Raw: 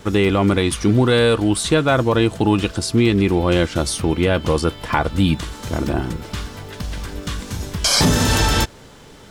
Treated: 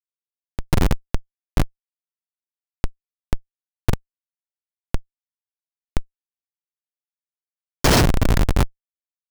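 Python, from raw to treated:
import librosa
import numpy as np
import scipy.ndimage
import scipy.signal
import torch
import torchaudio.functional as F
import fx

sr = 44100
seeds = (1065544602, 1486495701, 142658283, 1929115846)

y = fx.dmg_wind(x, sr, seeds[0], corner_hz=140.0, level_db=-21.0)
y = fx.bass_treble(y, sr, bass_db=3, treble_db=12)
y = fx.schmitt(y, sr, flips_db=-3.0)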